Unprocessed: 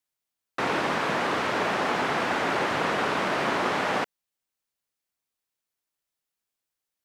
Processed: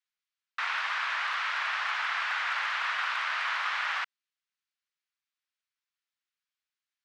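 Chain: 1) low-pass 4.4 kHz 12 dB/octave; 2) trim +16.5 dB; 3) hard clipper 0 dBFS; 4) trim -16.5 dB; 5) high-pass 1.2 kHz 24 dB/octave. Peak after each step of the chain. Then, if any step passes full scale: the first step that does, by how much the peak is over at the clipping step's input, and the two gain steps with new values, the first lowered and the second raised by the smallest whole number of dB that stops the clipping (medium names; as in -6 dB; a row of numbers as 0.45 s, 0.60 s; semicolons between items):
-13.0 dBFS, +3.5 dBFS, 0.0 dBFS, -16.5 dBFS, -18.0 dBFS; step 2, 3.5 dB; step 2 +12.5 dB, step 4 -12.5 dB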